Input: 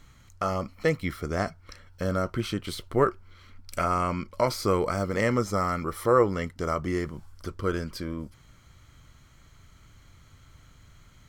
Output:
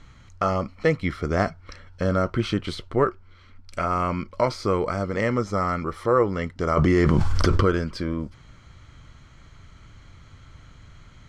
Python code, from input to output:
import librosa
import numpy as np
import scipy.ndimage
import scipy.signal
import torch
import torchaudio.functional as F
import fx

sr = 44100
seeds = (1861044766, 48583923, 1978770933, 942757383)

y = fx.rider(x, sr, range_db=3, speed_s=0.5)
y = fx.air_absorb(y, sr, metres=90.0)
y = fx.env_flatten(y, sr, amount_pct=100, at=(6.77, 7.68))
y = y * 10.0 ** (3.5 / 20.0)